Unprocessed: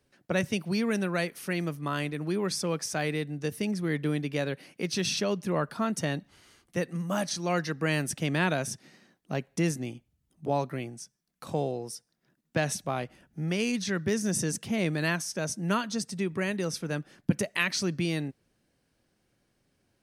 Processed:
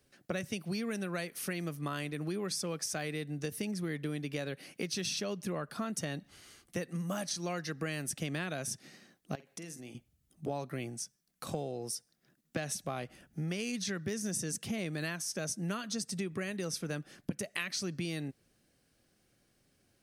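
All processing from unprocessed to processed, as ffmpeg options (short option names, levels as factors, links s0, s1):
-filter_complex "[0:a]asettb=1/sr,asplit=3[s0][s1][s2];[s0]atrim=end=9.354[s3];[s1]atrim=start=9.35:end=9.95,asetpts=PTS-STARTPTS,afade=t=in:d=0.004:c=qsin,afade=t=out:st=0.596:d=0.004:c=qsin,highpass=f=260:p=1,acompressor=threshold=0.00501:ratio=4:attack=3.2:release=140:knee=1:detection=peak,asplit=2[s4][s5];[s5]adelay=48,volume=0.251[s6];[s4][s6]amix=inputs=2:normalize=0,atrim=end_sample=26460[s7];[s2]atrim=start=9.946[s8];[s3][s7]acrossfade=d=0.004:c1=hsin:c2=qsin[s9];[s9][s8]acrossfade=d=0.004:c1=qsin:c2=hsin,highshelf=f=4500:g=6,bandreject=f=940:w=8.7,acompressor=threshold=0.0224:ratio=6"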